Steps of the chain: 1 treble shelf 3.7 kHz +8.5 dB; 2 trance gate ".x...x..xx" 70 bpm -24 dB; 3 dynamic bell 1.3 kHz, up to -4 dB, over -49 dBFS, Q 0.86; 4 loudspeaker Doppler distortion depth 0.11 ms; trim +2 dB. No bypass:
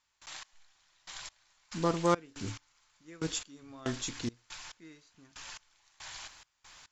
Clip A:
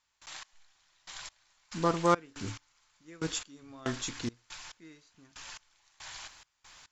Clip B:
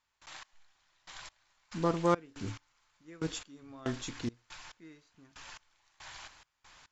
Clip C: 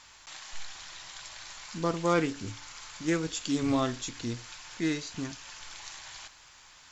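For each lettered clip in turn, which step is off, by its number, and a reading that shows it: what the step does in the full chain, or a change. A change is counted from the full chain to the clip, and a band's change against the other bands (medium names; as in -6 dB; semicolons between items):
3, 1 kHz band +3.0 dB; 1, 8 kHz band -6.0 dB; 2, 250 Hz band +3.5 dB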